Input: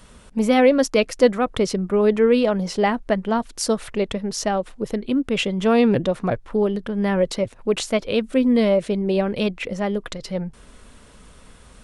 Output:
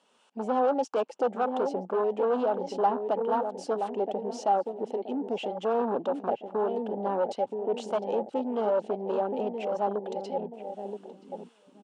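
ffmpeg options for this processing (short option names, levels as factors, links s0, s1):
-filter_complex "[0:a]aeval=exprs='0.631*(cos(1*acos(clip(val(0)/0.631,-1,1)))-cos(1*PI/2))+0.00398*(cos(3*acos(clip(val(0)/0.631,-1,1)))-cos(3*PI/2))+0.0562*(cos(4*acos(clip(val(0)/0.631,-1,1)))-cos(4*PI/2))':c=same,asplit=2[s0][s1];[s1]acompressor=threshold=0.0501:ratio=5,volume=0.891[s2];[s0][s2]amix=inputs=2:normalize=0,acrossover=split=660[s3][s4];[s3]aeval=exprs='val(0)*(1-0.5/2+0.5/2*cos(2*PI*1.7*n/s))':c=same[s5];[s4]aeval=exprs='val(0)*(1-0.5/2-0.5/2*cos(2*PI*1.7*n/s))':c=same[s6];[s5][s6]amix=inputs=2:normalize=0,asplit=2[s7][s8];[s8]adelay=975,lowpass=f=820:p=1,volume=0.398,asplit=2[s9][s10];[s10]adelay=975,lowpass=f=820:p=1,volume=0.41,asplit=2[s11][s12];[s12]adelay=975,lowpass=f=820:p=1,volume=0.41,asplit=2[s13][s14];[s14]adelay=975,lowpass=f=820:p=1,volume=0.41,asplit=2[s15][s16];[s16]adelay=975,lowpass=f=820:p=1,volume=0.41[s17];[s7][s9][s11][s13][s15][s17]amix=inputs=6:normalize=0,asoftclip=type=tanh:threshold=0.106,afwtdn=0.0447,highpass=f=280:w=0.5412,highpass=f=280:w=1.3066,equalizer=f=320:t=q:w=4:g=-5,equalizer=f=840:t=q:w=4:g=9,equalizer=f=2000:t=q:w=4:g=-5,equalizer=f=2900:t=q:w=4:g=8,lowpass=f=8400:w=0.5412,lowpass=f=8400:w=1.3066,volume=0.794"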